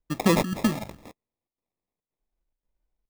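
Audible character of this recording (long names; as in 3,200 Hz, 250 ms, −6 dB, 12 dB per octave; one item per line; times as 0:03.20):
phaser sweep stages 6, 1 Hz, lowest notch 450–2,300 Hz
chopped level 1.9 Hz, depth 65%, duty 80%
aliases and images of a low sample rate 1,500 Hz, jitter 0%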